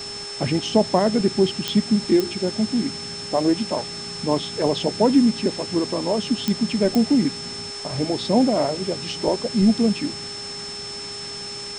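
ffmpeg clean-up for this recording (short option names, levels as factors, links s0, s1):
-af "adeclick=t=4,bandreject=f=407.2:t=h:w=4,bandreject=f=814.4:t=h:w=4,bandreject=f=1221.6:t=h:w=4,bandreject=f=1628.8:t=h:w=4,bandreject=f=2036:t=h:w=4,bandreject=f=5300:w=30,afwtdn=0.016"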